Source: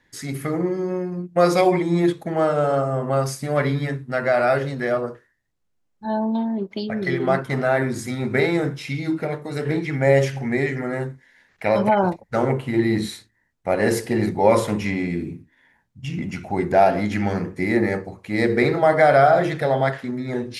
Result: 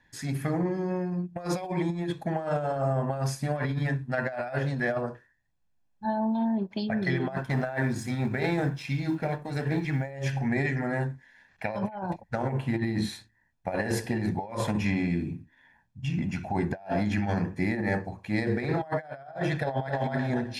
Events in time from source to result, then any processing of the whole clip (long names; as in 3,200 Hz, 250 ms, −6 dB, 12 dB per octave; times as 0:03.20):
0:07.36–0:10.11: mu-law and A-law mismatch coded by A
0:19.61–0:20.10: delay throw 260 ms, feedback 20%, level −2 dB
whole clip: high-shelf EQ 6,300 Hz −7.5 dB; comb filter 1.2 ms, depth 48%; compressor whose output falls as the input rises −22 dBFS, ratio −0.5; level −5.5 dB